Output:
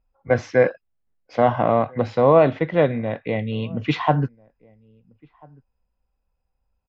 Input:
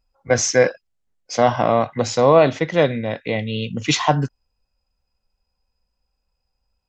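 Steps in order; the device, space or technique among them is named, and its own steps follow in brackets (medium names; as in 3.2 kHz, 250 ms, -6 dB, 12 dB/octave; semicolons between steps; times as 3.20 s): shout across a valley (distance through air 420 m; echo from a far wall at 230 m, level -28 dB)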